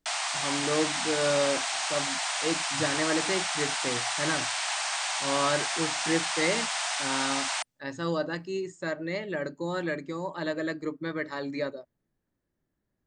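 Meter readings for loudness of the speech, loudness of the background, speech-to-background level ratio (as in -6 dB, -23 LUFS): -32.0 LUFS, -28.5 LUFS, -3.5 dB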